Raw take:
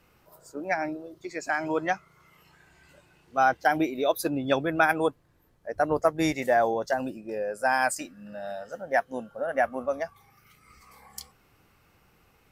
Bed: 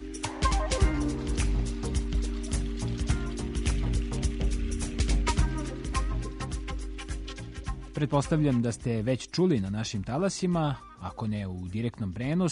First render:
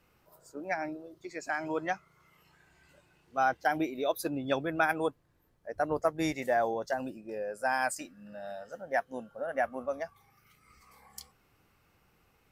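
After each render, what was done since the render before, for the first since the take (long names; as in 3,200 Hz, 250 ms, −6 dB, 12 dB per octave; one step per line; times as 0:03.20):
level −5.5 dB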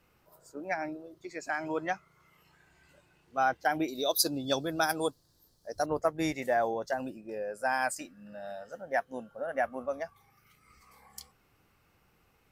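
0:03.88–0:05.86: high shelf with overshoot 3,300 Hz +11.5 dB, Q 3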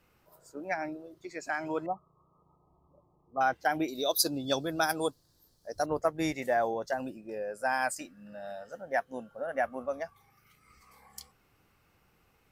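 0:01.86–0:03.41: linear-phase brick-wall low-pass 1,300 Hz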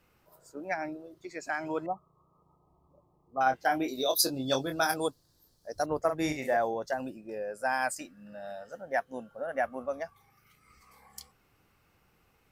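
0:03.44–0:04.97: double-tracking delay 23 ms −6 dB
0:06.04–0:06.57: double-tracking delay 46 ms −7 dB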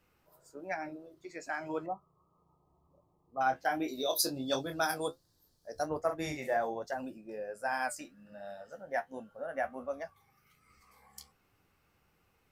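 flanger 1.3 Hz, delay 9.7 ms, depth 4.9 ms, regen −52%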